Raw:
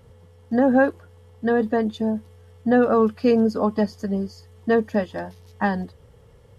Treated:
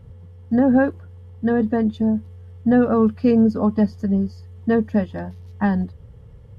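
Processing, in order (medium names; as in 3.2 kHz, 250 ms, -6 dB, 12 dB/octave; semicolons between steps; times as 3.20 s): tone controls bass +12 dB, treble -6 dB; trim -2.5 dB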